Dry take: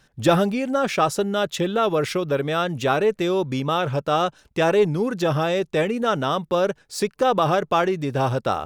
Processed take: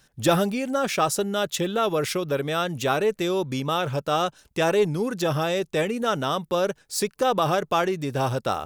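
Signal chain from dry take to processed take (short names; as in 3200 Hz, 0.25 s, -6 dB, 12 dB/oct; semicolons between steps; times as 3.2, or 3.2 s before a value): high shelf 5800 Hz +11 dB; gain -3 dB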